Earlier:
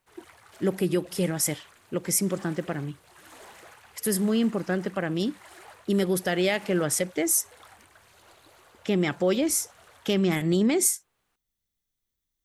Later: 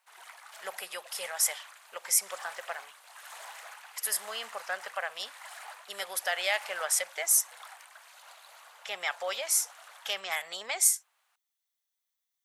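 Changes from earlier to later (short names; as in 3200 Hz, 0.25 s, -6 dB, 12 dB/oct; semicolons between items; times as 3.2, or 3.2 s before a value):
background +4.0 dB; master: add inverse Chebyshev high-pass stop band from 340 Hz, stop band 40 dB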